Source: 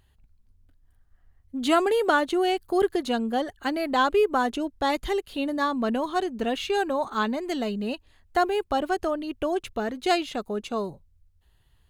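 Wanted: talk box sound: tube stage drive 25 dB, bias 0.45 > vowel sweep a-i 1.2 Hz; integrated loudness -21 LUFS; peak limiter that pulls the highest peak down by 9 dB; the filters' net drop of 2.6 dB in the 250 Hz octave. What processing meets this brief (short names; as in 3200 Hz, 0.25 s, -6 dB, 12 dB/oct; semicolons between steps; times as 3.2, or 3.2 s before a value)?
bell 250 Hz -3.5 dB; limiter -18 dBFS; tube stage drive 25 dB, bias 0.45; vowel sweep a-i 1.2 Hz; gain +21 dB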